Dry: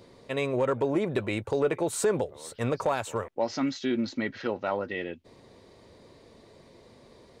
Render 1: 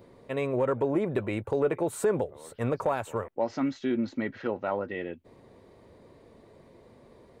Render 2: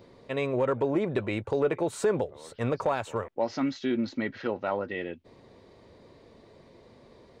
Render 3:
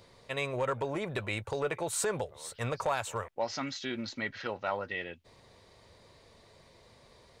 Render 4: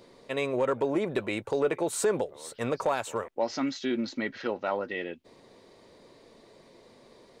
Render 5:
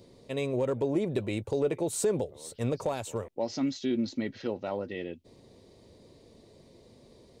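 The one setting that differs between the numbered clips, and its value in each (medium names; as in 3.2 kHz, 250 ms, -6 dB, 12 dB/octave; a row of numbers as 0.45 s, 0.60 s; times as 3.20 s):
peaking EQ, frequency: 5.1 kHz, 13 kHz, 290 Hz, 76 Hz, 1.4 kHz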